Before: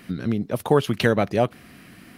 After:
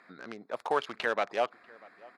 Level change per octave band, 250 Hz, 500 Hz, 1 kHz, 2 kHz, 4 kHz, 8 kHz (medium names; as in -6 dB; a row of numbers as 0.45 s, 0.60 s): -21.5 dB, -10.5 dB, -4.5 dB, -5.0 dB, -9.0 dB, -14.0 dB